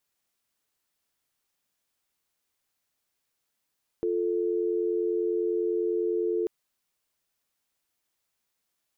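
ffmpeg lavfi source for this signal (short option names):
-f lavfi -i "aevalsrc='0.0447*(sin(2*PI*350*t)+sin(2*PI*440*t))':d=2.44:s=44100"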